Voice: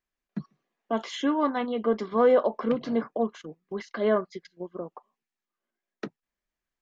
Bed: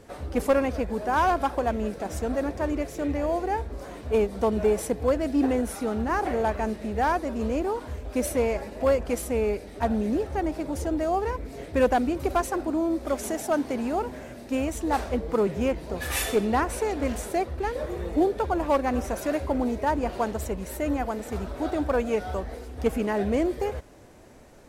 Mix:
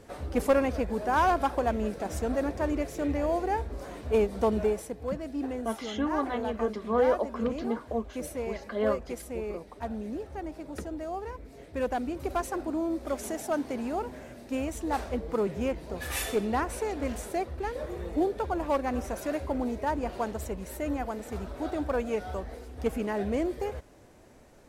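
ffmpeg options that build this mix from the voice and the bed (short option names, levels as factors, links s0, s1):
-filter_complex "[0:a]adelay=4750,volume=0.596[s0];[1:a]volume=1.58,afade=t=out:st=4.54:d=0.3:silence=0.375837,afade=t=in:st=11.7:d=0.87:silence=0.530884[s1];[s0][s1]amix=inputs=2:normalize=0"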